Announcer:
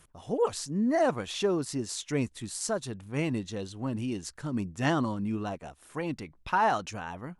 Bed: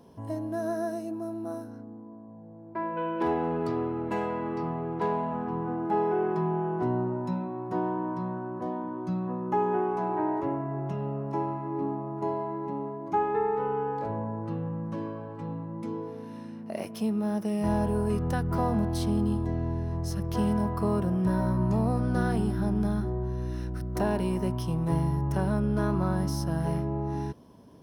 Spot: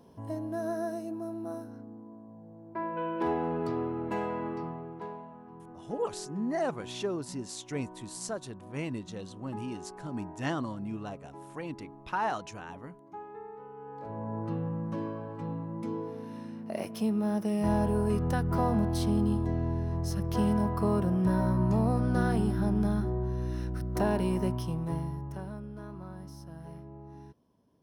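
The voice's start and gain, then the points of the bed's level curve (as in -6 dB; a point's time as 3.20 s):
5.60 s, -5.5 dB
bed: 4.46 s -2.5 dB
5.36 s -17.5 dB
13.74 s -17.5 dB
14.37 s -0.5 dB
24.45 s -0.5 dB
25.75 s -16.5 dB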